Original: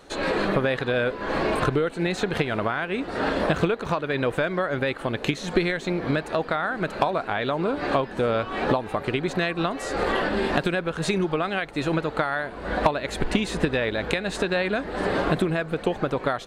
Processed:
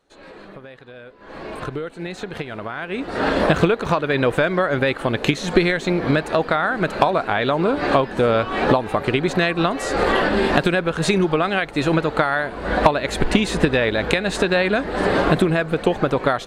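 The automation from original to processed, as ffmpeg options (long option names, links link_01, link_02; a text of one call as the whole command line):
ffmpeg -i in.wav -af "volume=6dB,afade=type=in:start_time=1.14:duration=0.62:silence=0.251189,afade=type=in:start_time=2.66:duration=0.73:silence=0.281838" out.wav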